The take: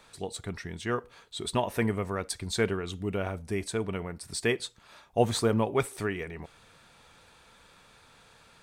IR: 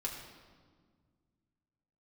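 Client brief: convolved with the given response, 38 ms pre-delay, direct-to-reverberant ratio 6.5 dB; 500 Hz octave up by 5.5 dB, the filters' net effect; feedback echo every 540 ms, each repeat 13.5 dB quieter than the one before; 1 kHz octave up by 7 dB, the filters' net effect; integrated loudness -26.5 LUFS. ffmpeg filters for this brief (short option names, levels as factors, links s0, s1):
-filter_complex "[0:a]equalizer=f=500:t=o:g=5,equalizer=f=1000:t=o:g=7.5,aecho=1:1:540|1080:0.211|0.0444,asplit=2[s0][s1];[1:a]atrim=start_sample=2205,adelay=38[s2];[s1][s2]afir=irnorm=-1:irlink=0,volume=0.422[s3];[s0][s3]amix=inputs=2:normalize=0"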